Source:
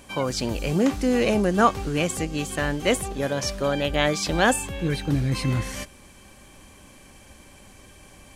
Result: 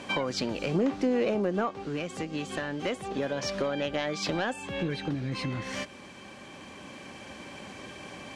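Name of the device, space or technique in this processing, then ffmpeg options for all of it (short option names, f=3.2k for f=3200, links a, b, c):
AM radio: -filter_complex "[0:a]highpass=160,lowpass=4.5k,acompressor=threshold=-34dB:ratio=8,asoftclip=type=tanh:threshold=-26.5dB,tremolo=f=0.25:d=0.34,asettb=1/sr,asplit=3[a][b][c];[a]atrim=end=0.744[d];[b]atrim=start=0.74:end=1.84,asetpts=PTS-STARTPTS,afade=t=in:d=0.004:c=qsin,afade=t=out:st=1.096:d=0.004:c=qsin,equalizer=f=450:w=0.5:g=5.5[e];[c]atrim=start=1.836[f];[d][e]acrossfade=d=0.004:c1=hsin:c2=qsin[g];[g][f]acrossfade=d=0.004:c1=qsin:c2=hsin,volume=8.5dB"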